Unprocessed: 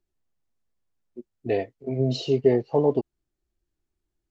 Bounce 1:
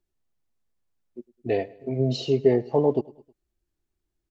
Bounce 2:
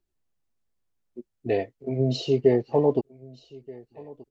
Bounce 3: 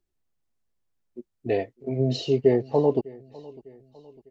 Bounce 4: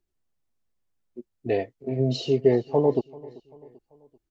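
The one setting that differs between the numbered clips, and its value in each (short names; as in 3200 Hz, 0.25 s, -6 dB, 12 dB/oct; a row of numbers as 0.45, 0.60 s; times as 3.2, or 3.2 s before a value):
feedback echo, time: 0.105, 1.228, 0.602, 0.389 s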